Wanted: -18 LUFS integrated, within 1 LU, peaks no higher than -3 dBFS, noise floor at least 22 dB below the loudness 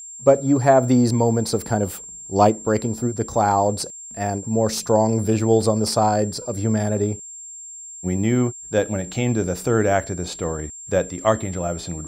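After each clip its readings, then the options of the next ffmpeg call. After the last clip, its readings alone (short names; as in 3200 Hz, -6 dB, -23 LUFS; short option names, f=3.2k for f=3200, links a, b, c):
steady tone 7400 Hz; tone level -35 dBFS; loudness -21.0 LUFS; peak -1.5 dBFS; loudness target -18.0 LUFS
-> -af "bandreject=f=7.4k:w=30"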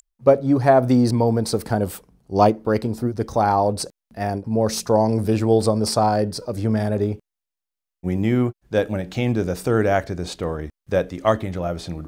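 steady tone none; loudness -21.0 LUFS; peak -2.0 dBFS; loudness target -18.0 LUFS
-> -af "volume=3dB,alimiter=limit=-3dB:level=0:latency=1"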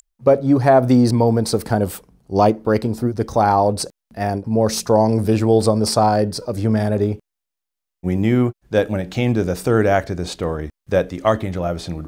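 loudness -18.5 LUFS; peak -3.0 dBFS; noise floor -82 dBFS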